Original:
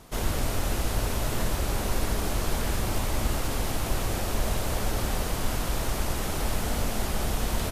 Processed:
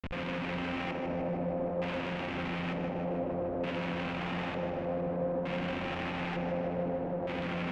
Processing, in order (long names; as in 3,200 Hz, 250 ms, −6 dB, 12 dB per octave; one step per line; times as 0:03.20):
channel vocoder with a chord as carrier bare fifth, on F3
0:00.62–0:01.05: comb filter 3.8 ms, depth 46%
comparator with hysteresis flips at −46.5 dBFS
auto-filter low-pass square 0.55 Hz 590–2,600 Hz
tape delay 154 ms, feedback 90%, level −5.5 dB, low-pass 3,700 Hz
level −4 dB